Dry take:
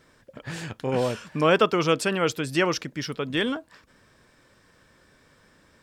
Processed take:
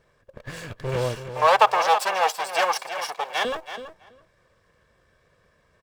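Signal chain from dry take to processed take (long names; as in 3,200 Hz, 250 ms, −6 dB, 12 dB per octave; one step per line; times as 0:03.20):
lower of the sound and its delayed copy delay 1.8 ms
in parallel at −7.5 dB: centre clipping without the shift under −39 dBFS
0:01.34–0:03.45: on the sum: high-pass with resonance 810 Hz, resonance Q 4.9
on a send: repeating echo 328 ms, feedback 16%, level −10 dB
on the sum: one half of a high-frequency compander decoder only
level −1.5 dB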